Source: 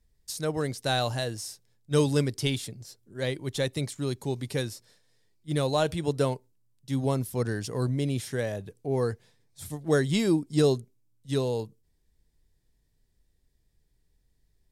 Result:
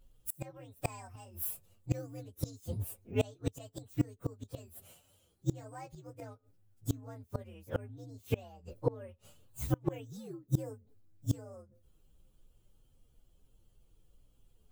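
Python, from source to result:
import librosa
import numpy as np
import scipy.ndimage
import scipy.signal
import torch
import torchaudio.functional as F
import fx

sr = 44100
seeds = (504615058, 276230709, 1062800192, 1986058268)

y = fx.partial_stretch(x, sr, pct=126)
y = fx.gate_flip(y, sr, shuts_db=-26.0, range_db=-29)
y = y * 10.0 ** (9.5 / 20.0)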